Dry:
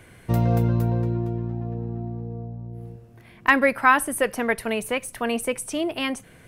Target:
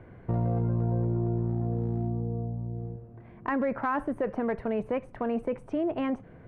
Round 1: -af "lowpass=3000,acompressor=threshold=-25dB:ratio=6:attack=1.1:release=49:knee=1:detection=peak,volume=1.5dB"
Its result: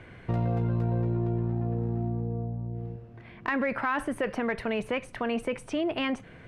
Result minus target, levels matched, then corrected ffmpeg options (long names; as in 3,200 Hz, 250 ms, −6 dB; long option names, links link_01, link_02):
4,000 Hz band +14.5 dB
-af "lowpass=1000,acompressor=threshold=-25dB:ratio=6:attack=1.1:release=49:knee=1:detection=peak,volume=1.5dB"